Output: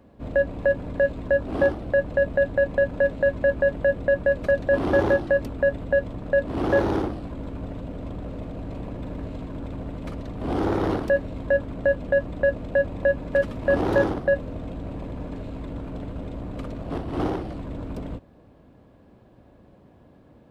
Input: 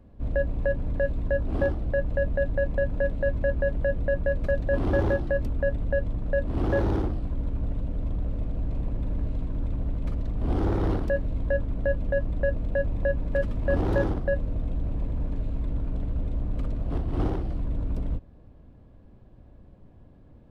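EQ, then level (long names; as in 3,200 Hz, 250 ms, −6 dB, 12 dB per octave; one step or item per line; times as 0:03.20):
high-pass filter 300 Hz 6 dB per octave
+7.0 dB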